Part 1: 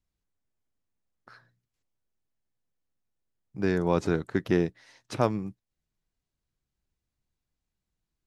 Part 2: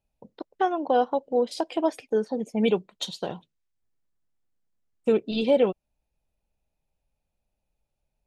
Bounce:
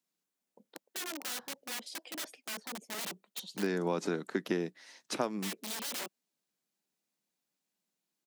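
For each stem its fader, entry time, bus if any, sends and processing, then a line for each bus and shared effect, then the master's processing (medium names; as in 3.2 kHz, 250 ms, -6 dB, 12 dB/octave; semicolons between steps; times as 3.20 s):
-1.0 dB, 0.00 s, no send, none
-13.0 dB, 0.35 s, no send, integer overflow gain 24 dB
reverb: none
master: steep high-pass 180 Hz 36 dB/octave; treble shelf 3.5 kHz +7 dB; compression 6:1, threshold -28 dBFS, peak gain reduction 9.5 dB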